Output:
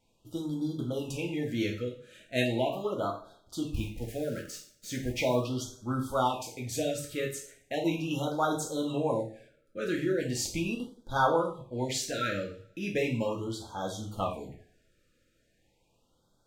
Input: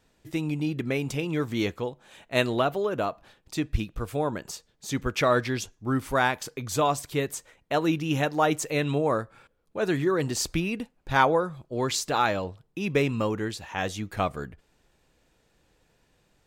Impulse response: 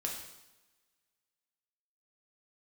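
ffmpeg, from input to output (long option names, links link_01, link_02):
-filter_complex "[0:a]asettb=1/sr,asplit=3[link_01][link_02][link_03];[link_01]atrim=end=3.674[link_04];[link_02]atrim=start=3.67:end=5.37,asetpts=PTS-STARTPTS,afade=type=in:duration=0.004:curve=qsin,afade=type=out:start_time=1.696:duration=0.004:curve=qsin,acrusher=bits=8:dc=4:mix=0:aa=0.000001[link_05];[link_03]atrim=start=5.366[link_06];[link_04][link_05]acrossfade=duration=0.004:curve1=hsin:curve2=qsin[link_07];[link_07][link_06]acrossfade=duration=0.004:curve1=qsin:curve2=hsin[link_08];[1:a]atrim=start_sample=2205,asetrate=83790,aresample=44100[link_09];[link_08][link_09]afir=irnorm=-1:irlink=0,afftfilt=real='re*(1-between(b*sr/1024,850*pow(2300/850,0.5+0.5*sin(2*PI*0.38*pts/sr))/1.41,850*pow(2300/850,0.5+0.5*sin(2*PI*0.38*pts/sr))*1.41))':imag='im*(1-between(b*sr/1024,850*pow(2300/850,0.5+0.5*sin(2*PI*0.38*pts/sr))/1.41,850*pow(2300/850,0.5+0.5*sin(2*PI*0.38*pts/sr))*1.41))':win_size=1024:overlap=0.75"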